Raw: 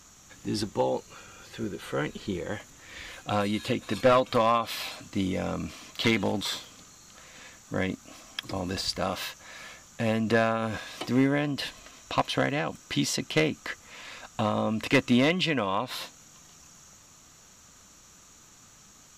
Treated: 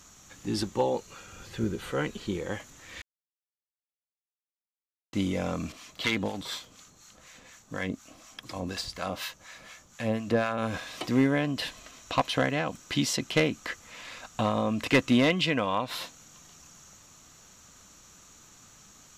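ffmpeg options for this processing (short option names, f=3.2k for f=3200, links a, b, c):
-filter_complex "[0:a]asettb=1/sr,asplit=3[a][b][c];[a]atrim=end=1.324[d];[b]atrim=start=1.32:end=1.92,asetpts=PTS-STARTPTS,afade=t=in:d=0.004:c=qsin,afade=t=out:st=0.596:d=0.004:c=qsin,lowshelf=f=210:g=9.5[e];[c]atrim=start=1.916[f];[d][e]acrossfade=d=0.004:c1=hsin:c2=qsin[g];[g][f]acrossfade=d=0.004:c1=qsin:c2=hsin,asettb=1/sr,asplit=3[h][i][j];[h]atrim=end=5.724[k];[i]atrim=start=5.72:end=10.58,asetpts=PTS-STARTPTS,afade=t=in:d=0.004:c=qsin,afade=t=out:st=4.856:d=0.004:c=qsin,acrossover=split=820[l][m];[l]aeval=exprs='val(0)*(1-0.7/2+0.7/2*cos(2*PI*4.1*n/s))':c=same[n];[m]aeval=exprs='val(0)*(1-0.7/2-0.7/2*cos(2*PI*4.1*n/s))':c=same[o];[n][o]amix=inputs=2:normalize=0[p];[j]atrim=start=10.576[q];[k][p]acrossfade=d=0.004:c1=hsin:c2=qsin[r];[r][q]acrossfade=d=0.004:c1=qsin:c2=hsin,asplit=3[s][t][u];[s]atrim=end=3.02,asetpts=PTS-STARTPTS,afade=t=out:st=3.016:d=0.004:c=hsin[v];[t]atrim=start=3.02:end=5.13,asetpts=PTS-STARTPTS,volume=0[w];[u]atrim=start=5.13,asetpts=PTS-STARTPTS,afade=t=in:d=0.004:c=hsin[x];[v][w][x]concat=n=3:v=0:a=1"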